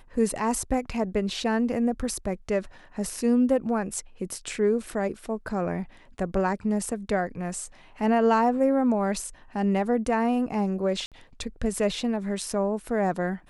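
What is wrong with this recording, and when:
0:11.06–0:11.12: drop-out 57 ms

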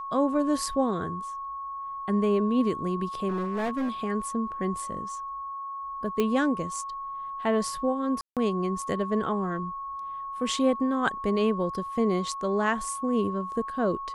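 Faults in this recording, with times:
whistle 1,100 Hz −33 dBFS
0:03.28–0:03.90: clipping −25 dBFS
0:06.20: click −13 dBFS
0:08.21–0:08.37: drop-out 157 ms

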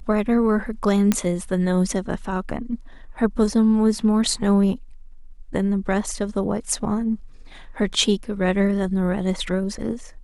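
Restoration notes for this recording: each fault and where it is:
0:01.12: click −5 dBFS

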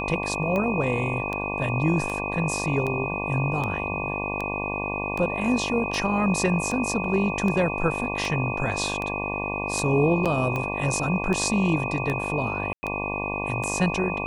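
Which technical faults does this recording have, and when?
mains buzz 50 Hz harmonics 23 −31 dBFS
scratch tick 78 rpm −16 dBFS
whistle 2,500 Hz −30 dBFS
0:10.25–0:10.26: drop-out 7.1 ms
0:12.73–0:12.83: drop-out 100 ms

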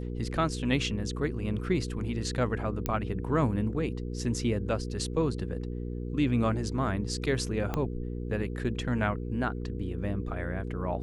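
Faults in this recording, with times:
mains hum 60 Hz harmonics 8 −35 dBFS
0:02.86: click −14 dBFS
0:07.74: click −17 dBFS

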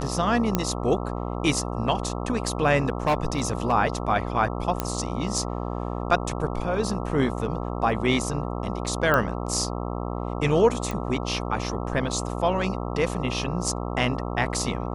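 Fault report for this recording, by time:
mains buzz 60 Hz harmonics 22 −30 dBFS
0:00.55: click −7 dBFS
0:02.85–0:03.73: clipping −17 dBFS
0:04.80: click −9 dBFS
0:09.14: click −9 dBFS
0:10.91: click

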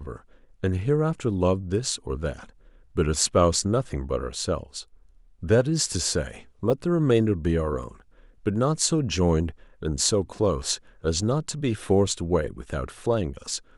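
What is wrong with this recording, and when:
0:06.70: drop-out 3.2 ms

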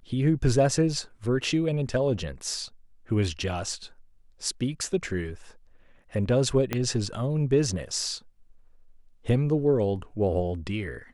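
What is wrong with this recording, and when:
0:06.73: click −12 dBFS

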